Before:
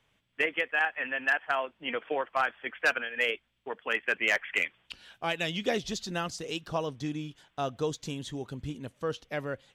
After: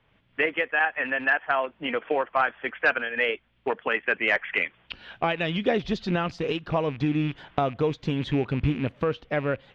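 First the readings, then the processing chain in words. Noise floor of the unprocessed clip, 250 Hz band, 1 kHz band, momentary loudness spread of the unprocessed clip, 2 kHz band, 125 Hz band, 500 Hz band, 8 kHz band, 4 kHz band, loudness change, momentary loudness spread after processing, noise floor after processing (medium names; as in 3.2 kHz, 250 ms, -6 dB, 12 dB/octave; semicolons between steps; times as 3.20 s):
-73 dBFS, +9.5 dB, +5.5 dB, 11 LU, +4.0 dB, +10.5 dB, +6.5 dB, under -10 dB, +1.0 dB, +5.0 dB, 6 LU, -65 dBFS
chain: rattle on loud lows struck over -48 dBFS, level -37 dBFS; recorder AGC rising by 23 dB/s; distance through air 340 m; trim +6.5 dB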